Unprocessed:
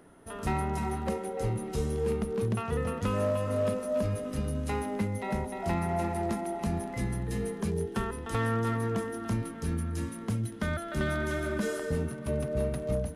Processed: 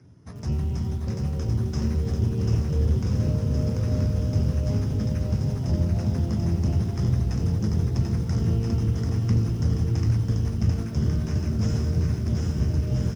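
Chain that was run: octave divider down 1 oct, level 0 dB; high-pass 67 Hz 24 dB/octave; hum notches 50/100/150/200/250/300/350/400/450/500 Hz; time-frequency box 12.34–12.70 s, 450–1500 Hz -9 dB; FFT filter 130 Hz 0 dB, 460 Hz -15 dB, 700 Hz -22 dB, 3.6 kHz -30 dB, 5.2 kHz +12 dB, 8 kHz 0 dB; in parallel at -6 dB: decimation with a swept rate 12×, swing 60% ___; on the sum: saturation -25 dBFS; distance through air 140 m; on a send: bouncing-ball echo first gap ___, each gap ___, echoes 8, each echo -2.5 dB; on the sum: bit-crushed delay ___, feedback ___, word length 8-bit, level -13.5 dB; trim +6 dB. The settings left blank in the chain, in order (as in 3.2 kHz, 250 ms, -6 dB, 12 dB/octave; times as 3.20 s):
0.49 Hz, 740 ms, 0.8×, 90 ms, 35%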